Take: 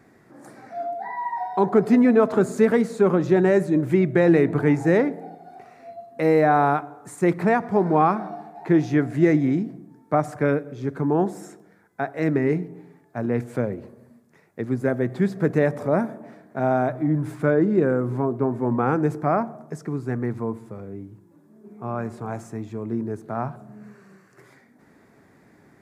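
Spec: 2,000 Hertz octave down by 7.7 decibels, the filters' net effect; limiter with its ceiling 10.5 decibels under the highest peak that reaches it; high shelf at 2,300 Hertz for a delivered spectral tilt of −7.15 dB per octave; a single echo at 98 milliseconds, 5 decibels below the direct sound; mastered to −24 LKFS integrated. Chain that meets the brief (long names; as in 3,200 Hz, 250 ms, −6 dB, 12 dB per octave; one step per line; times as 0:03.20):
parametric band 2,000 Hz −6 dB
high-shelf EQ 2,300 Hz −8.5 dB
brickwall limiter −17.5 dBFS
single-tap delay 98 ms −5 dB
level +3 dB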